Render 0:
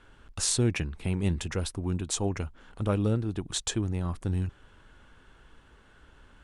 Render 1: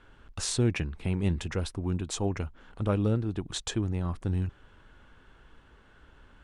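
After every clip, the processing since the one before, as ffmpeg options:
ffmpeg -i in.wav -af "highshelf=frequency=7300:gain=-11" out.wav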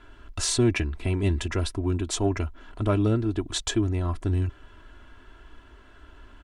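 ffmpeg -i in.wav -filter_complex "[0:a]aecho=1:1:3:0.68,asplit=2[link_01][link_02];[link_02]aeval=exprs='0.2*sin(PI/2*1.41*val(0)/0.2)':channel_layout=same,volume=-11.5dB[link_03];[link_01][link_03]amix=inputs=2:normalize=0" out.wav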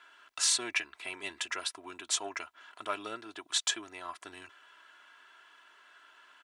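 ffmpeg -i in.wav -af "highpass=1100" out.wav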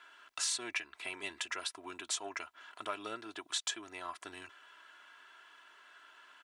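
ffmpeg -i in.wav -af "acompressor=threshold=-37dB:ratio=2" out.wav

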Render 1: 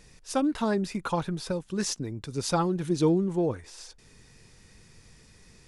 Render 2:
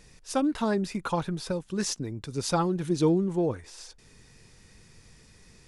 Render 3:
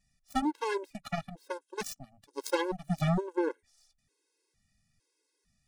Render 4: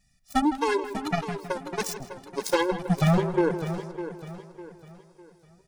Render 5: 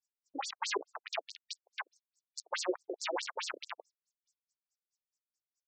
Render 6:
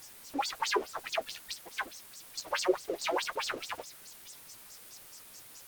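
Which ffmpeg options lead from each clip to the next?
ffmpeg -i in.wav -af anull out.wav
ffmpeg -i in.wav -af "aeval=exprs='0.237*(cos(1*acos(clip(val(0)/0.237,-1,1)))-cos(1*PI/2))+0.0376*(cos(7*acos(clip(val(0)/0.237,-1,1)))-cos(7*PI/2))':channel_layout=same,highshelf=frequency=5800:gain=6,afftfilt=real='re*gt(sin(2*PI*1.1*pts/sr)*(1-2*mod(floor(b*sr/1024/280),2)),0)':imag='im*gt(sin(2*PI*1.1*pts/sr)*(1-2*mod(floor(b*sr/1024/280),2)),0)':win_size=1024:overlap=0.75" out.wav
ffmpeg -i in.wav -filter_complex "[0:a]asplit=2[link_01][link_02];[link_02]adelay=160,lowpass=frequency=2800:poles=1,volume=-11.5dB,asplit=2[link_03][link_04];[link_04]adelay=160,lowpass=frequency=2800:poles=1,volume=0.54,asplit=2[link_05][link_06];[link_06]adelay=160,lowpass=frequency=2800:poles=1,volume=0.54,asplit=2[link_07][link_08];[link_08]adelay=160,lowpass=frequency=2800:poles=1,volume=0.54,asplit=2[link_09][link_10];[link_10]adelay=160,lowpass=frequency=2800:poles=1,volume=0.54,asplit=2[link_11][link_12];[link_12]adelay=160,lowpass=frequency=2800:poles=1,volume=0.54[link_13];[link_03][link_05][link_07][link_09][link_11][link_13]amix=inputs=6:normalize=0[link_14];[link_01][link_14]amix=inputs=2:normalize=0,asoftclip=type=hard:threshold=-21dB,asplit=2[link_15][link_16];[link_16]aecho=0:1:603|1206|1809|2412:0.266|0.0984|0.0364|0.0135[link_17];[link_15][link_17]amix=inputs=2:normalize=0,volume=7dB" out.wav
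ffmpeg -i in.wav -filter_complex "[0:a]acrossover=split=7000[link_01][link_02];[link_01]acrusher=bits=3:mix=0:aa=0.000001[link_03];[link_03][link_02]amix=inputs=2:normalize=0,afftfilt=real='re*between(b*sr/1024,370*pow(6100/370,0.5+0.5*sin(2*PI*4.7*pts/sr))/1.41,370*pow(6100/370,0.5+0.5*sin(2*PI*4.7*pts/sr))*1.41)':imag='im*between(b*sr/1024,370*pow(6100/370,0.5+0.5*sin(2*PI*4.7*pts/sr))/1.41,370*pow(6100/370,0.5+0.5*sin(2*PI*4.7*pts/sr))*1.41)':win_size=1024:overlap=0.75,volume=-3dB" out.wav
ffmpeg -i in.wav -af "aeval=exprs='val(0)+0.5*0.00668*sgn(val(0))':channel_layout=same,flanger=delay=5.8:depth=7.2:regen=-37:speed=1.8:shape=triangular,volume=8.5dB" -ar 48000 -c:a libopus -b:a 32k out.opus

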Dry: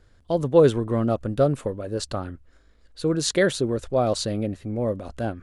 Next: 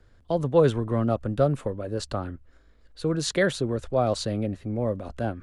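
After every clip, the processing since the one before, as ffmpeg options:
ffmpeg -i in.wav -filter_complex "[0:a]highshelf=frequency=4100:gain=-6.5,acrossover=split=270|460|1500[link_01][link_02][link_03][link_04];[link_02]acompressor=threshold=-37dB:ratio=6[link_05];[link_01][link_05][link_03][link_04]amix=inputs=4:normalize=0" out.wav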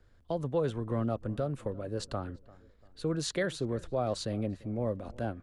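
ffmpeg -i in.wav -filter_complex "[0:a]alimiter=limit=-15dB:level=0:latency=1:release=267,asplit=2[link_01][link_02];[link_02]adelay=344,lowpass=frequency=1700:poles=1,volume=-21.5dB,asplit=2[link_03][link_04];[link_04]adelay=344,lowpass=frequency=1700:poles=1,volume=0.46,asplit=2[link_05][link_06];[link_06]adelay=344,lowpass=frequency=1700:poles=1,volume=0.46[link_07];[link_01][link_03][link_05][link_07]amix=inputs=4:normalize=0,volume=-5.5dB" out.wav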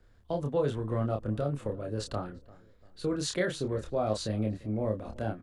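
ffmpeg -i in.wav -filter_complex "[0:a]asplit=2[link_01][link_02];[link_02]adelay=28,volume=-4dB[link_03];[link_01][link_03]amix=inputs=2:normalize=0" out.wav

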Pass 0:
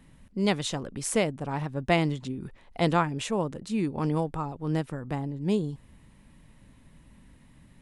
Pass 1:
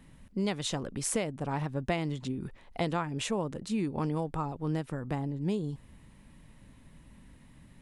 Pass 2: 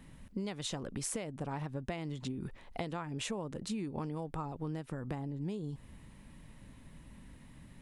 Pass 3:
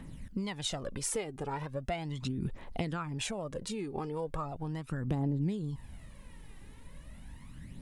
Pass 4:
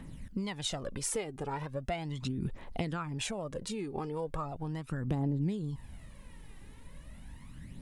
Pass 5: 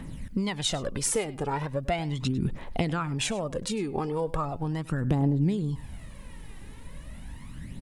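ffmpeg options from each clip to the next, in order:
ffmpeg -i in.wav -af "acompressor=threshold=-27dB:ratio=5" out.wav
ffmpeg -i in.wav -af "acompressor=threshold=-36dB:ratio=6,volume=1dB" out.wav
ffmpeg -i in.wav -af "aphaser=in_gain=1:out_gain=1:delay=2.6:decay=0.58:speed=0.38:type=triangular,volume=1.5dB" out.wav
ffmpeg -i in.wav -af anull out.wav
ffmpeg -i in.wav -af "aecho=1:1:101:0.112,volume=7dB" out.wav

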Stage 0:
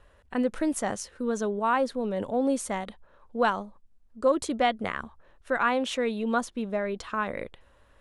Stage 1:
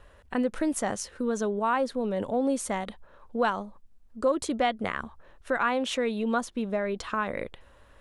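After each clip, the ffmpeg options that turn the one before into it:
ffmpeg -i in.wav -af "acompressor=threshold=-35dB:ratio=1.5,volume=4dB" out.wav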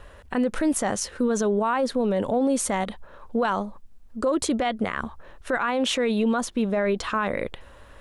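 ffmpeg -i in.wav -af "alimiter=limit=-23.5dB:level=0:latency=1:release=29,volume=8dB" out.wav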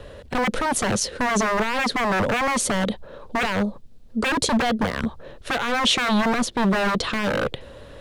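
ffmpeg -i in.wav -filter_complex "[0:a]equalizer=frequency=125:width_type=o:width=1:gain=10,equalizer=frequency=250:width_type=o:width=1:gain=5,equalizer=frequency=500:width_type=o:width=1:gain=10,equalizer=frequency=1000:width_type=o:width=1:gain=-3,equalizer=frequency=4000:width_type=o:width=1:gain=8,acrossover=split=170|3100[link_01][link_02][link_03];[link_02]aeval=exprs='0.119*(abs(mod(val(0)/0.119+3,4)-2)-1)':channel_layout=same[link_04];[link_01][link_04][link_03]amix=inputs=3:normalize=0,volume=1.5dB" out.wav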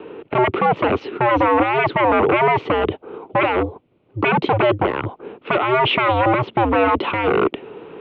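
ffmpeg -i in.wav -af "equalizer=frequency=1800:width_type=o:width=0.34:gain=-12,highpass=frequency=310:width_type=q:width=0.5412,highpass=frequency=310:width_type=q:width=1.307,lowpass=frequency=2800:width_type=q:width=0.5176,lowpass=frequency=2800:width_type=q:width=0.7071,lowpass=frequency=2800:width_type=q:width=1.932,afreqshift=-120,volume=8.5dB" out.wav

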